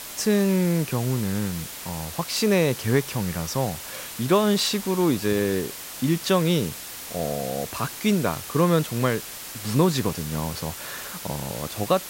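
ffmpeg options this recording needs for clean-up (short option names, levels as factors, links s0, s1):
-af "adeclick=t=4,afwtdn=0.016"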